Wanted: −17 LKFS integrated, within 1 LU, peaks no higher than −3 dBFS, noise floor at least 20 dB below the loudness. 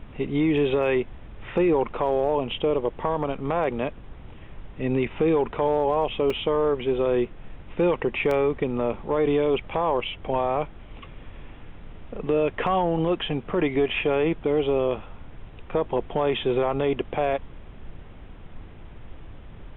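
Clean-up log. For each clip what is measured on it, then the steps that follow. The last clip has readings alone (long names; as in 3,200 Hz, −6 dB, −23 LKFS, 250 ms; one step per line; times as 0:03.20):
number of dropouts 2; longest dropout 2.9 ms; background noise floor −44 dBFS; target noise floor −45 dBFS; integrated loudness −25.0 LKFS; sample peak −12.5 dBFS; target loudness −17.0 LKFS
→ repair the gap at 0:06.30/0:08.31, 2.9 ms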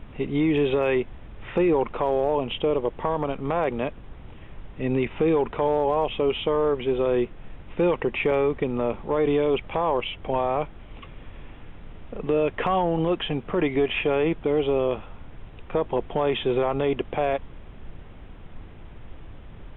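number of dropouts 0; background noise floor −44 dBFS; target noise floor −45 dBFS
→ noise reduction from a noise print 6 dB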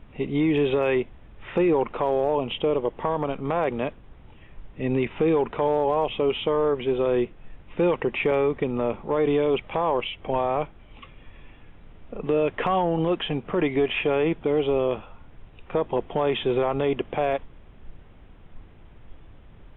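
background noise floor −49 dBFS; integrated loudness −25.0 LKFS; sample peak −13.0 dBFS; target loudness −17.0 LKFS
→ level +8 dB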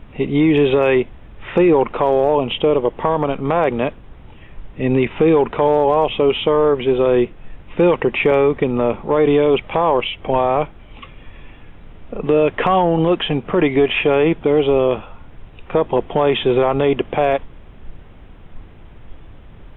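integrated loudness −17.0 LKFS; sample peak −5.0 dBFS; background noise floor −41 dBFS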